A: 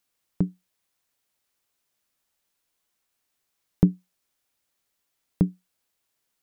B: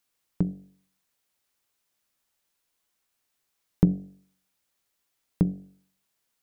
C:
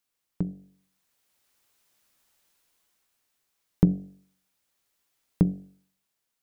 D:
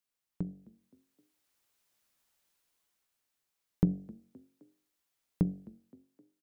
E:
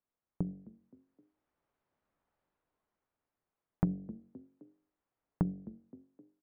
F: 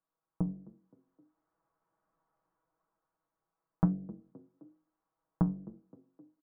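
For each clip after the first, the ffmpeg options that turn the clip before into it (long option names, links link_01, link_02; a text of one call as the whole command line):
ffmpeg -i in.wav -af "bandreject=frequency=47.27:width_type=h:width=4,bandreject=frequency=94.54:width_type=h:width=4,bandreject=frequency=141.81:width_type=h:width=4,bandreject=frequency=189.08:width_type=h:width=4,bandreject=frequency=236.35:width_type=h:width=4,bandreject=frequency=283.62:width_type=h:width=4,bandreject=frequency=330.89:width_type=h:width=4,bandreject=frequency=378.16:width_type=h:width=4,bandreject=frequency=425.43:width_type=h:width=4,bandreject=frequency=472.7:width_type=h:width=4,bandreject=frequency=519.97:width_type=h:width=4,bandreject=frequency=567.24:width_type=h:width=4,bandreject=frequency=614.51:width_type=h:width=4,bandreject=frequency=661.78:width_type=h:width=4,bandreject=frequency=709.05:width_type=h:width=4,bandreject=frequency=756.32:width_type=h:width=4" out.wav
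ffmpeg -i in.wav -af "dynaudnorm=framelen=230:gausssize=9:maxgain=12dB,volume=-4dB" out.wav
ffmpeg -i in.wav -filter_complex "[0:a]asplit=4[link_01][link_02][link_03][link_04];[link_02]adelay=260,afreqshift=40,volume=-23dB[link_05];[link_03]adelay=520,afreqshift=80,volume=-29.2dB[link_06];[link_04]adelay=780,afreqshift=120,volume=-35.4dB[link_07];[link_01][link_05][link_06][link_07]amix=inputs=4:normalize=0,volume=-7dB" out.wav
ffmpeg -i in.wav -af "asoftclip=type=hard:threshold=-17dB,lowpass=1100,acompressor=threshold=-35dB:ratio=2,volume=4dB" out.wav
ffmpeg -i in.wav -af "lowpass=frequency=1200:width_type=q:width=2,aecho=1:1:6.2:0.8,flanger=delay=8.7:depth=8.3:regen=-62:speed=1:shape=triangular,volume=2.5dB" out.wav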